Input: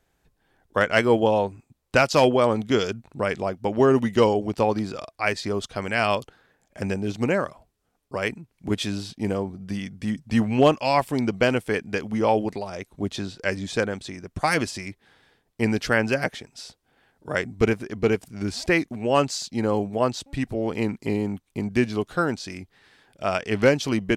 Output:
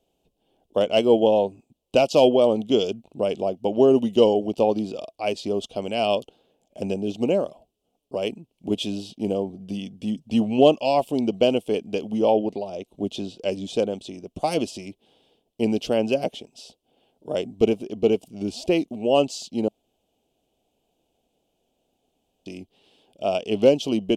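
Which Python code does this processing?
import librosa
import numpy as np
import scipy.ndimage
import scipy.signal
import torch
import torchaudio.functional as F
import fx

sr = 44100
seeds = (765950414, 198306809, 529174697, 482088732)

y = fx.high_shelf(x, sr, hz=fx.line((12.3, 6100.0), (12.87, 9700.0)), db=-11.5, at=(12.3, 12.87), fade=0.02)
y = fx.edit(y, sr, fx.room_tone_fill(start_s=19.68, length_s=2.78), tone=tone)
y = fx.curve_eq(y, sr, hz=(120.0, 210.0, 670.0, 1800.0, 2900.0, 4200.0), db=(0, 9, 12, -17, 13, 4))
y = y * 10.0 ** (-8.5 / 20.0)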